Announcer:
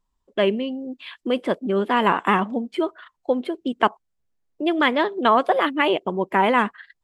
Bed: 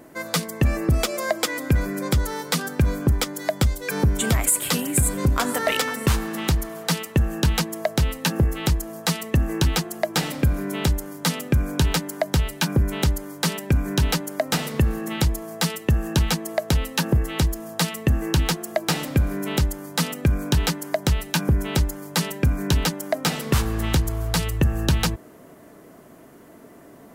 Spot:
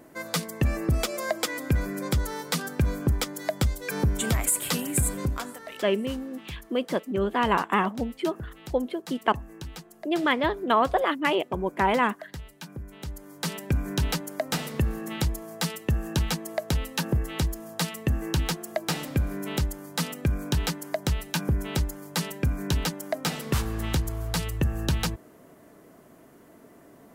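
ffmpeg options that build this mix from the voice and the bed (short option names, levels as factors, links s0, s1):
-filter_complex "[0:a]adelay=5450,volume=0.596[s0];[1:a]volume=2.82,afade=t=out:st=5.07:d=0.51:silence=0.188365,afade=t=in:st=13:d=0.63:silence=0.211349[s1];[s0][s1]amix=inputs=2:normalize=0"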